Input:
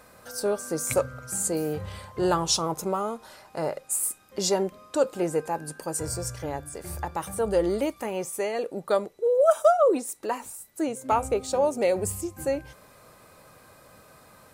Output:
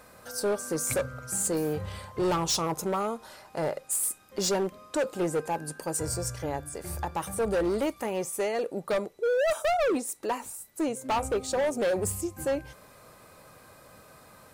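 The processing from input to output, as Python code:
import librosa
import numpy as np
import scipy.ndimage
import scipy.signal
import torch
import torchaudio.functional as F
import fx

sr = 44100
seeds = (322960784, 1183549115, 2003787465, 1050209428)

y = np.clip(10.0 ** (23.0 / 20.0) * x, -1.0, 1.0) / 10.0 ** (23.0 / 20.0)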